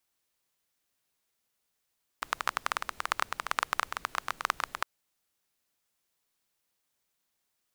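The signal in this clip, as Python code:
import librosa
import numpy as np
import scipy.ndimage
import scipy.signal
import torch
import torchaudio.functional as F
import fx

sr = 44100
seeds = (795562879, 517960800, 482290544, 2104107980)

y = fx.rain(sr, seeds[0], length_s=2.61, drops_per_s=15.0, hz=1200.0, bed_db=-21)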